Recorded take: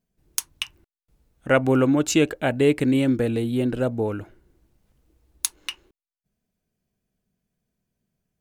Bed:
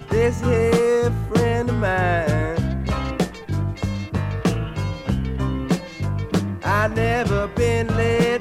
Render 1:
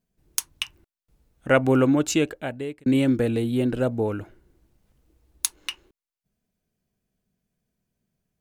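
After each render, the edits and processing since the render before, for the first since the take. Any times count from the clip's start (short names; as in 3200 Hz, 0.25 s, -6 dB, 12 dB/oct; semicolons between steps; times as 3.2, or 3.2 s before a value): 1.91–2.86 fade out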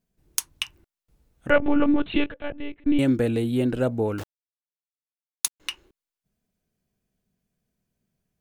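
1.5–2.99 monotone LPC vocoder at 8 kHz 290 Hz; 4.18–5.6 requantised 6-bit, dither none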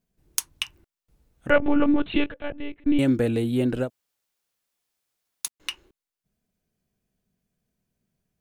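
3.85–5.45 room tone, crossfade 0.10 s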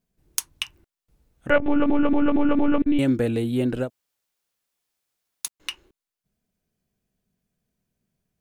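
1.67 stutter in place 0.23 s, 5 plays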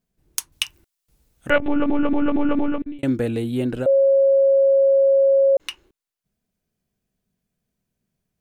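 0.52–1.68 high shelf 2900 Hz +10 dB; 2.58–3.03 fade out; 3.86–5.57 bleep 546 Hz -12 dBFS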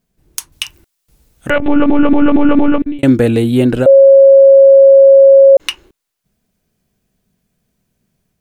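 AGC gain up to 3 dB; maximiser +9 dB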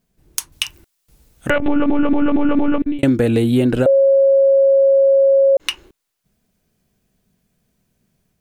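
compressor 4:1, threshold -12 dBFS, peak gain reduction 7.5 dB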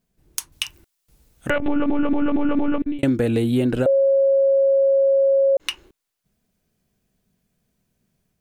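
gain -4.5 dB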